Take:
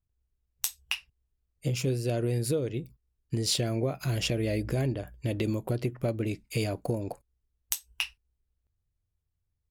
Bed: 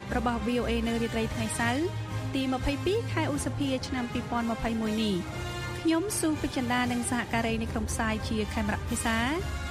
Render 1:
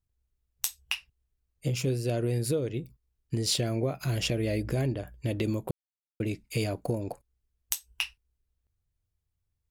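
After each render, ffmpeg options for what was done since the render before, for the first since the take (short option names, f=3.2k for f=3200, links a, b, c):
-filter_complex "[0:a]asplit=3[a][b][c];[a]atrim=end=5.71,asetpts=PTS-STARTPTS,afade=t=out:st=5.706:d=0.004:c=hsin[d];[b]atrim=start=5.71:end=6.2,asetpts=PTS-STARTPTS,volume=0[e];[c]atrim=start=6.2,asetpts=PTS-STARTPTS,afade=t=in:d=0.004:c=hsin[f];[d][e][f]concat=n=3:v=0:a=1"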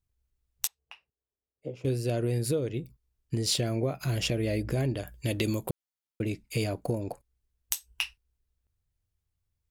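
-filter_complex "[0:a]asettb=1/sr,asplit=3[a][b][c];[a]atrim=end=0.674[d];[b]atrim=start=0.67:end=1.85,asetpts=PTS-STARTPTS,afade=t=in:d=0.004:c=qsin,afade=t=out:st=1.176:d=0.004:c=qsin,bandpass=f=490:t=q:w=1.5[e];[c]atrim=start=1.846[f];[d][e]acrossfade=d=0.004:c1=hsin:c2=qsin[g];[g][f]acrossfade=d=0.004:c1=qsin:c2=hsin,asettb=1/sr,asplit=3[h][i][j];[h]atrim=end=4.944[k];[i]atrim=start=4.94:end=5.7,asetpts=PTS-STARTPTS,afade=t=in:d=0.004:c=qsin,afade=t=out:st=0.756:d=0.004:c=qsin,highshelf=f=2.5k:g=10.5[l];[j]atrim=start=5.696[m];[k][l]acrossfade=d=0.004:c1=hsin:c2=qsin[n];[n][m]acrossfade=d=0.004:c1=qsin:c2=hsin"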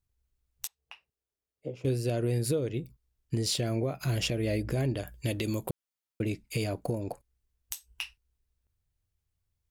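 -af "alimiter=limit=-19dB:level=0:latency=1:release=208"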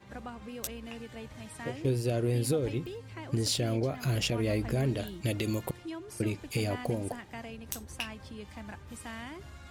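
-filter_complex "[1:a]volume=-14.5dB[a];[0:a][a]amix=inputs=2:normalize=0"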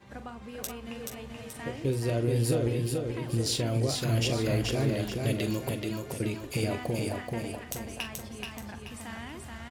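-filter_complex "[0:a]asplit=2[a][b];[b]adelay=43,volume=-11dB[c];[a][c]amix=inputs=2:normalize=0,aecho=1:1:430|860|1290|1720|2150:0.668|0.267|0.107|0.0428|0.0171"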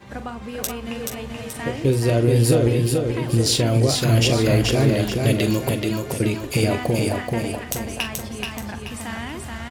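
-af "volume=10dB"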